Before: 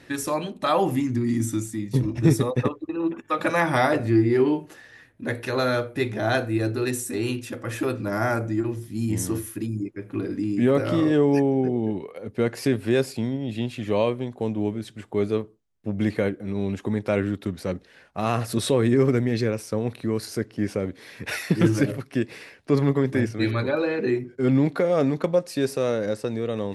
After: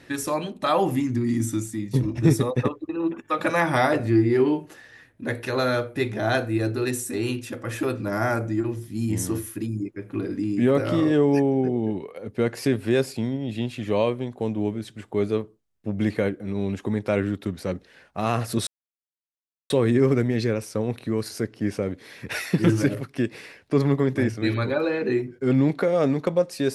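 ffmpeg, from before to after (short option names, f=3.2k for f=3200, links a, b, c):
-filter_complex "[0:a]asplit=2[a][b];[a]atrim=end=18.67,asetpts=PTS-STARTPTS,afade=t=out:st=18.666:d=0.004:c=hsin,apad=pad_dur=1.03[c];[b]atrim=start=18.67,asetpts=PTS-STARTPTS,afade=t=in:d=0.004:c=hsin[d];[c][d]concat=n=2:v=0:a=1"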